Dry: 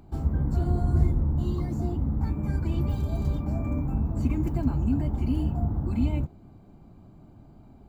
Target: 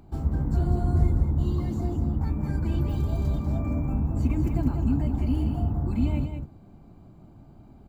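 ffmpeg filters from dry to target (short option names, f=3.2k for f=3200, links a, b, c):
-af "aecho=1:1:194:0.447"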